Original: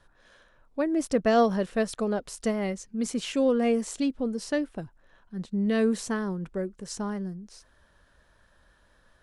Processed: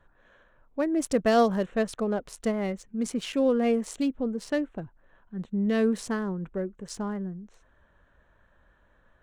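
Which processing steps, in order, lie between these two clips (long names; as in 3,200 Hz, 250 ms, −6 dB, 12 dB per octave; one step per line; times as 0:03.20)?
adaptive Wiener filter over 9 samples
0:00.82–0:01.66: high-shelf EQ 4,600 Hz +7.5 dB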